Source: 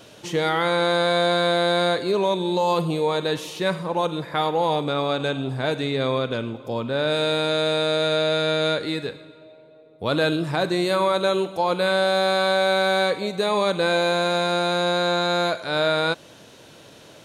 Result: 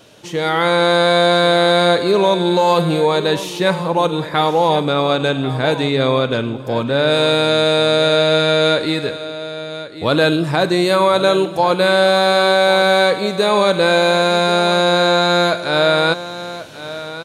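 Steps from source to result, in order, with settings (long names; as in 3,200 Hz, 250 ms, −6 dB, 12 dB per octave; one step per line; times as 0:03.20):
automatic gain control gain up to 8 dB
on a send: single-tap delay 1,090 ms −14 dB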